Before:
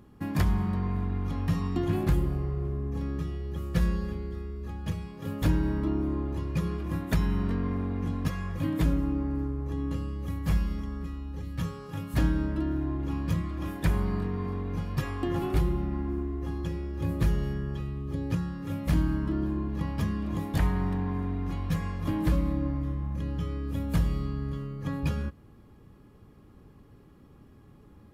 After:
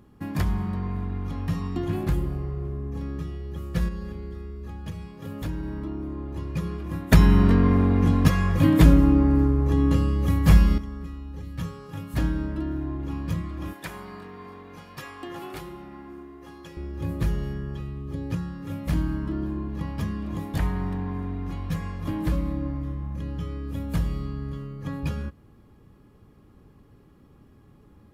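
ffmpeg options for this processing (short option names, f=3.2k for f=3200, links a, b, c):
-filter_complex "[0:a]asettb=1/sr,asplit=3[a][b][c];[a]atrim=end=3.884[d];[b]atrim=start=3.88:end=6.36,asetpts=PTS-STARTPTS,afade=t=in:d=0.004:c=qsin,afade=t=out:st=2.476:d=0.004:c=qsin,acompressor=threshold=-31dB:ratio=2:attack=3.2:release=140:knee=1:detection=peak[e];[c]atrim=start=6.356[f];[d][e]acrossfade=d=0.004:c1=hsin:c2=qsin[g];[g][f]acrossfade=d=0.004:c1=qsin:c2=hsin,asettb=1/sr,asplit=3[h][i][j];[h]atrim=end=13.734[k];[i]atrim=start=13.73:end=16.77,asetpts=PTS-STARTPTS,afade=t=in:d=0.004:c=qsin,afade=t=out:st=3.036:d=0.004:c=qsin,highpass=f=760:p=1[l];[j]atrim=start=16.766[m];[k][l]acrossfade=d=0.004:c1=hsin:c2=qsin[n];[n][m]acrossfade=d=0.004:c1=qsin:c2=hsin,asplit=3[o][p][q];[o]atrim=end=7.122[r];[p]atrim=start=7.118:end=10.782,asetpts=PTS-STARTPTS,volume=11dB[s];[q]atrim=start=10.778[t];[r][s]acrossfade=d=0.004:c1=hsin:c2=hsin[u];[u][t]acrossfade=d=0.004:c1=hsin:c2=hsin"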